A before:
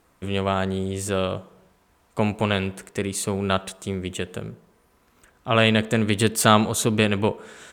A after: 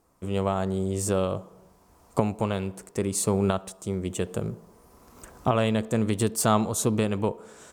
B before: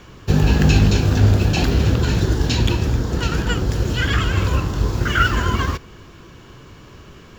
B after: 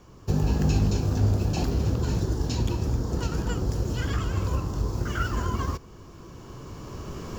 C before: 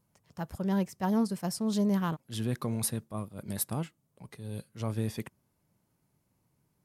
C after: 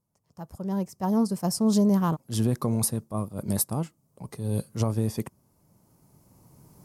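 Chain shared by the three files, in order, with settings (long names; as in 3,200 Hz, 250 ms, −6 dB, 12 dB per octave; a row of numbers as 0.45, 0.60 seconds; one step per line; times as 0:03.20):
camcorder AGC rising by 8.9 dB per second
flat-topped bell 2,400 Hz −8.5 dB
loudness normalisation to −27 LKFS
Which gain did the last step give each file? −4.5, −8.5, −6.5 decibels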